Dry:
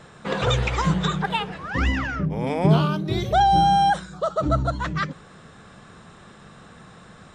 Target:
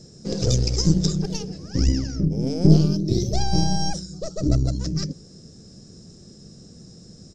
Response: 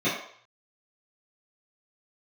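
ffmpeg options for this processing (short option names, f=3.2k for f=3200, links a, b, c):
-af "aeval=exprs='0.473*(cos(1*acos(clip(val(0)/0.473,-1,1)))-cos(1*PI/2))+0.0944*(cos(4*acos(clip(val(0)/0.473,-1,1)))-cos(4*PI/2))':c=same,firequalizer=gain_entry='entry(350,0);entry(980,-27);entry(3600,-15);entry(5100,13);entry(8900,-6)':delay=0.05:min_phase=1,volume=3dB"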